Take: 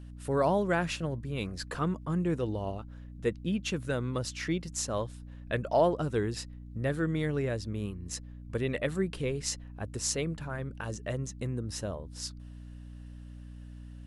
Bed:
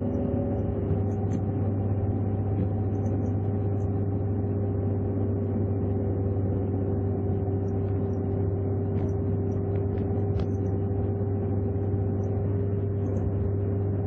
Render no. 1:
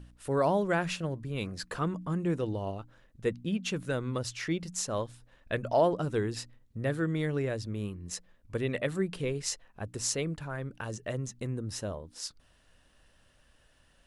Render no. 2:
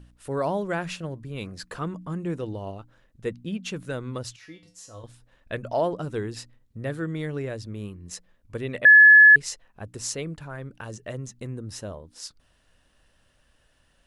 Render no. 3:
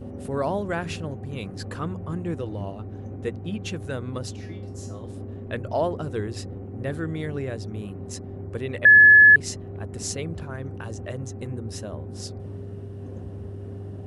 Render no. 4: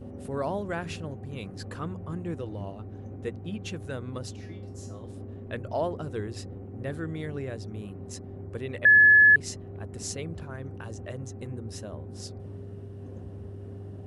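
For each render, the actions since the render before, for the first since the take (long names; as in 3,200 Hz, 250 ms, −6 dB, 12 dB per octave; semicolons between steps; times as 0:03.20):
hum removal 60 Hz, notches 5
0:04.36–0:05.04: tuned comb filter 100 Hz, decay 0.33 s, harmonics odd, mix 90%; 0:08.85–0:09.36: beep over 1,710 Hz −8 dBFS
mix in bed −9.5 dB
level −4.5 dB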